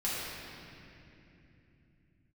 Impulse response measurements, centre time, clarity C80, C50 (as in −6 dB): 180 ms, −2.0 dB, −3.5 dB